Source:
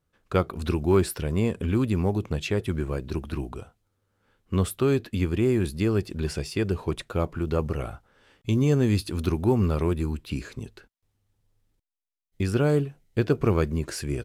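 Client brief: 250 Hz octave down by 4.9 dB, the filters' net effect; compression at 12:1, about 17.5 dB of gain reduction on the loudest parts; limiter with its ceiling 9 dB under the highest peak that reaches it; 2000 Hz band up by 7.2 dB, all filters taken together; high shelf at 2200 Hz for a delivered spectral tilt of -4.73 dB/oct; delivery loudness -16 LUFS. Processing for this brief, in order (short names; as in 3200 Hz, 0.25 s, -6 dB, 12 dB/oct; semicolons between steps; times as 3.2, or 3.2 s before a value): bell 250 Hz -7.5 dB; bell 2000 Hz +5.5 dB; high shelf 2200 Hz +7 dB; compressor 12:1, threshold -36 dBFS; gain +27 dB; limiter -4.5 dBFS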